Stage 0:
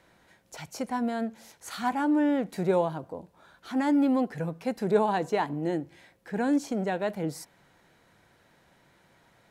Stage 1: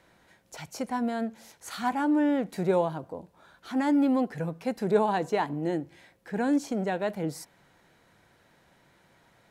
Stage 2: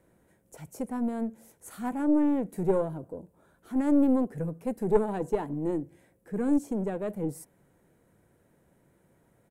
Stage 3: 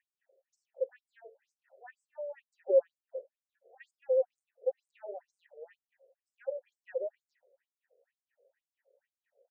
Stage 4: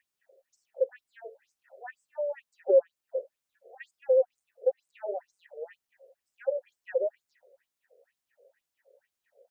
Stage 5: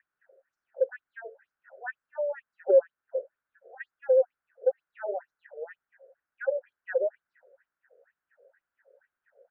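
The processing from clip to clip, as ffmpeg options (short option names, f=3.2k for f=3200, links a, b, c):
-af anull
-af "firequalizer=gain_entry='entry(460,0);entry(770,-9);entry(4300,-19);entry(8600,-1)':delay=0.05:min_phase=1,aeval=exprs='(tanh(7.08*val(0)+0.75)-tanh(0.75))/7.08':c=same,volume=5dB"
-filter_complex "[0:a]asplit=3[a][b][c];[a]bandpass=f=530:t=q:w=8,volume=0dB[d];[b]bandpass=f=1.84k:t=q:w=8,volume=-6dB[e];[c]bandpass=f=2.48k:t=q:w=8,volume=-9dB[f];[d][e][f]amix=inputs=3:normalize=0,afftfilt=real='re*between(b*sr/1024,500*pow(7000/500,0.5+0.5*sin(2*PI*2.1*pts/sr))/1.41,500*pow(7000/500,0.5+0.5*sin(2*PI*2.1*pts/sr))*1.41)':imag='im*between(b*sr/1024,500*pow(7000/500,0.5+0.5*sin(2*PI*2.1*pts/sr))/1.41,500*pow(7000/500,0.5+0.5*sin(2*PI*2.1*pts/sr))*1.41)':win_size=1024:overlap=0.75,volume=7.5dB"
-af "acompressor=threshold=-34dB:ratio=1.5,volume=8.5dB"
-af "lowpass=f=1.5k:t=q:w=5.4"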